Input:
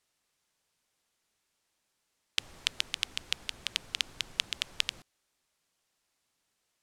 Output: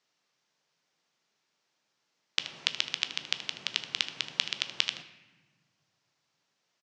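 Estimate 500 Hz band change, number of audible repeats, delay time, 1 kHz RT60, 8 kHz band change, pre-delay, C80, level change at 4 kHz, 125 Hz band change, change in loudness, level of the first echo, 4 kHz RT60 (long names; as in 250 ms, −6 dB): +2.5 dB, 1, 77 ms, 1.2 s, −1.0 dB, 13 ms, 14.5 dB, +2.0 dB, −1.0 dB, +2.0 dB, −13.5 dB, 0.90 s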